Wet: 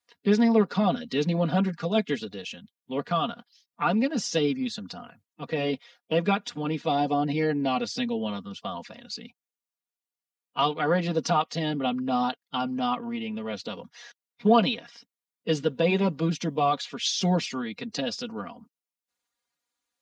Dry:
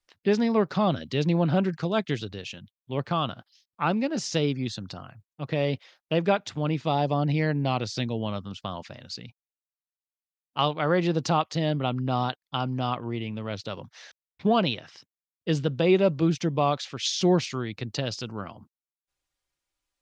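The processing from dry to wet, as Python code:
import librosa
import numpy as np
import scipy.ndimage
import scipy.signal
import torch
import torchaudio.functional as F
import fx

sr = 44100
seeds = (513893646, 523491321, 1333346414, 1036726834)

y = fx.spec_quant(x, sr, step_db=15)
y = scipy.signal.sosfilt(scipy.signal.butter(2, 140.0, 'highpass', fs=sr, output='sos'), y)
y = y + 0.82 * np.pad(y, (int(4.2 * sr / 1000.0), 0))[:len(y)]
y = y * 10.0 ** (-1.0 / 20.0)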